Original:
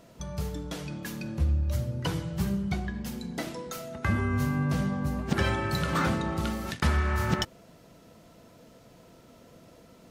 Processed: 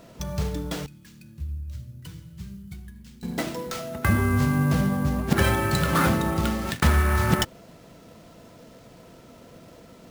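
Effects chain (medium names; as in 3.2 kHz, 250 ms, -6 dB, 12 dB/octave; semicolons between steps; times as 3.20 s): sample-rate reducer 12 kHz, jitter 20%; 0.86–3.23 s: amplifier tone stack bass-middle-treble 6-0-2; trim +5.5 dB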